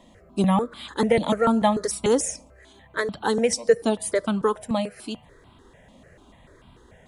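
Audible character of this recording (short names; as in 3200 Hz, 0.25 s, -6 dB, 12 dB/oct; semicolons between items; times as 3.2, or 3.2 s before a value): notches that jump at a steady rate 6.8 Hz 410–1800 Hz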